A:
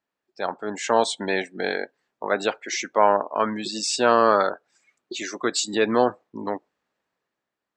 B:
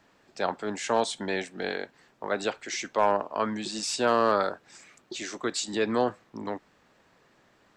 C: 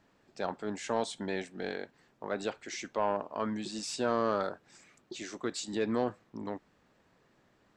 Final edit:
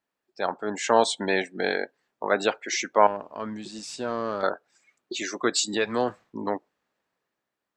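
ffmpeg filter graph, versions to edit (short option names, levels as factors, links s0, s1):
-filter_complex "[0:a]asplit=3[s0][s1][s2];[s0]atrim=end=3.072[s3];[2:a]atrim=start=3.068:end=4.432[s4];[s1]atrim=start=4.428:end=5.96[s5];[1:a]atrim=start=5.72:end=6.36[s6];[s2]atrim=start=6.12[s7];[s3][s4]acrossfade=d=0.004:c1=hsin:c2=hsin[s8];[s8][s5]acrossfade=d=0.004:c1=hsin:c2=hsin[s9];[s9][s6]acrossfade=d=0.24:c1=tri:c2=tri[s10];[s10][s7]acrossfade=d=0.24:c1=tri:c2=tri"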